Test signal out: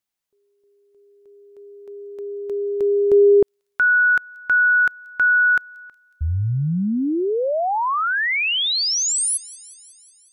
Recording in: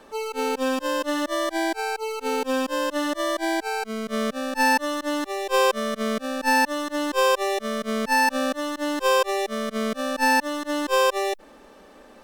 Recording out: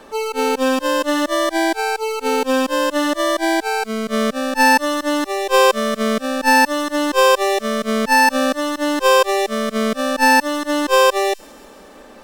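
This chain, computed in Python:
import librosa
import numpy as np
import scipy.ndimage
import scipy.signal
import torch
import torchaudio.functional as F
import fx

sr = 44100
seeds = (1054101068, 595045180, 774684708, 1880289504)

y = fx.echo_wet_highpass(x, sr, ms=183, feedback_pct=65, hz=5200.0, wet_db=-19.0)
y = y * librosa.db_to_amplitude(7.0)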